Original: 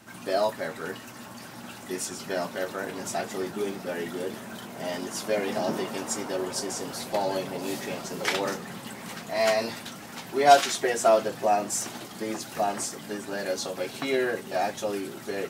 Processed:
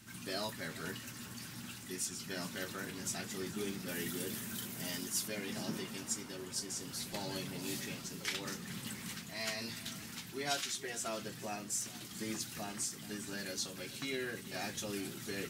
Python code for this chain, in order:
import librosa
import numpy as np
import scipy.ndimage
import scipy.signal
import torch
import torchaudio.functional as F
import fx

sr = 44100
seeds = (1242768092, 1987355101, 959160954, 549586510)

y = fx.tone_stack(x, sr, knobs='6-0-2')
y = fx.rider(y, sr, range_db=4, speed_s=0.5)
y = fx.high_shelf(y, sr, hz=8800.0, db=11.0, at=(3.88, 5.28))
y = y + 10.0 ** (-17.5 / 20.0) * np.pad(y, (int(427 * sr / 1000.0), 0))[:len(y)]
y = F.gain(torch.from_numpy(y), 10.0).numpy()